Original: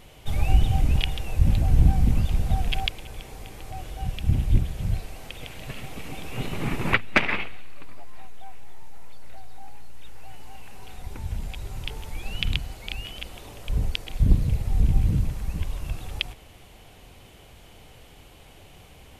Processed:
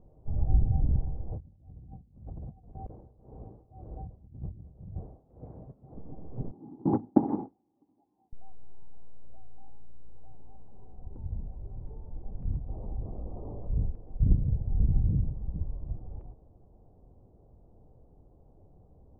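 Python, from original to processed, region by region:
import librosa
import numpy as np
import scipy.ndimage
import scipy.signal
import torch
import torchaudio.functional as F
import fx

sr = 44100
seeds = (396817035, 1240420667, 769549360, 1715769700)

y = fx.chain(x, sr, fx.highpass(hz=62.0, slope=12),
    fx.over_compress(threshold_db=-33.0, ratio=-1.0),
    fx.tremolo(hz=1.9, depth=0.89), at=(1.31, 5.95))
y = fx.chain(y, sr, fx.gate_hold(open_db=-15.0, close_db=-19.0, hold_ms=71.0, range_db=-21, attack_ms=1.4, release_ms=100.0),
    fx.highpass(hz=120.0, slope=12),
    fx.small_body(hz=(290.0, 810.0), ring_ms=30, db=18), at=(6.51, 8.33))
y = fx.chain(y, sr, fx.brickwall_lowpass(high_hz=1300.0),
    fx.env_flatten(amount_pct=50), at=(12.68, 13.86))
y = scipy.signal.sosfilt(scipy.signal.bessel(6, 510.0, 'lowpass', norm='mag', fs=sr, output='sos'), y)
y = fx.dynamic_eq(y, sr, hz=120.0, q=0.89, threshold_db=-33.0, ratio=4.0, max_db=3)
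y = y * 10.0 ** (-6.0 / 20.0)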